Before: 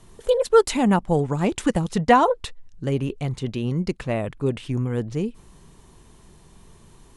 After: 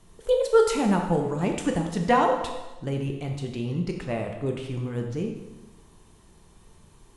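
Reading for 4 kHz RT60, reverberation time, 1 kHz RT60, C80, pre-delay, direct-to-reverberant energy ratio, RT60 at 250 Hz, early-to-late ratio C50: 1.0 s, 1.1 s, 1.1 s, 7.0 dB, 4 ms, 2.0 dB, 1.1 s, 5.0 dB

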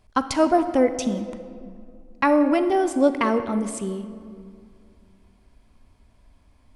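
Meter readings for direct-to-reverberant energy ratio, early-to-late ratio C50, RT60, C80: 10.0 dB, 10.5 dB, 2.3 s, 11.5 dB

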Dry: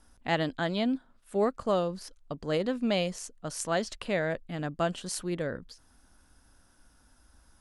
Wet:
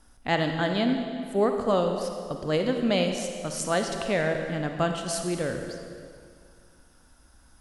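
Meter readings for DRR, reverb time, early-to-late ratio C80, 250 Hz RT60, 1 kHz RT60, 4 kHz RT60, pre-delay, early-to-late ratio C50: 4.0 dB, 2.2 s, 5.5 dB, 2.4 s, 2.1 s, 1.9 s, 40 ms, 4.5 dB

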